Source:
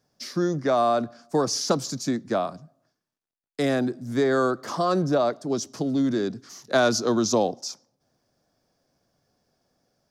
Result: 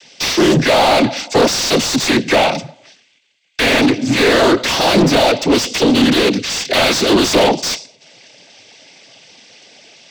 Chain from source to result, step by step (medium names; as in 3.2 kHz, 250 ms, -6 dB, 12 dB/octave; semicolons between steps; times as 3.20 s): resonant high shelf 1.8 kHz +12.5 dB, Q 3; noise-vocoded speech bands 16; overdrive pedal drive 36 dB, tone 1.3 kHz, clips at -1 dBFS